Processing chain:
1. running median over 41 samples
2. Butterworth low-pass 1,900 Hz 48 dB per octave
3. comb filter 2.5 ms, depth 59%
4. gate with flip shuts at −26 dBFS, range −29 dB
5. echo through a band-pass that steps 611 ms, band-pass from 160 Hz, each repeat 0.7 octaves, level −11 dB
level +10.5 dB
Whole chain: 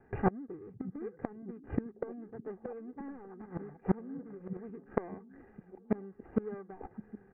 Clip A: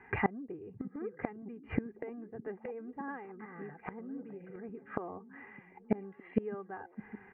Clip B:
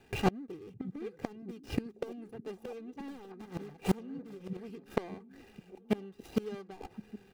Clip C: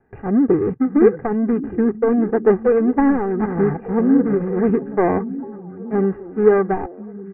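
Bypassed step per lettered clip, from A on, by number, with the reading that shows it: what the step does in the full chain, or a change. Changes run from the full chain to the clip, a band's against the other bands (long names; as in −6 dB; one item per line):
1, 2 kHz band +9.0 dB
2, 2 kHz band +3.5 dB
4, change in momentary loudness spread −4 LU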